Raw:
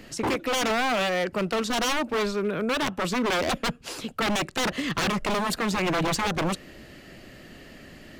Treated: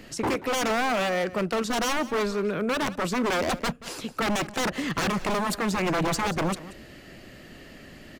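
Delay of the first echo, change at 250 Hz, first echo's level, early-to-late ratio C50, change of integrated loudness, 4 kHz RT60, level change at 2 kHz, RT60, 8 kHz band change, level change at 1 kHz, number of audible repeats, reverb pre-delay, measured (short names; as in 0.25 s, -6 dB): 0.182 s, 0.0 dB, -17.0 dB, none, -0.5 dB, none, -1.0 dB, none, -0.5 dB, 0.0 dB, 1, none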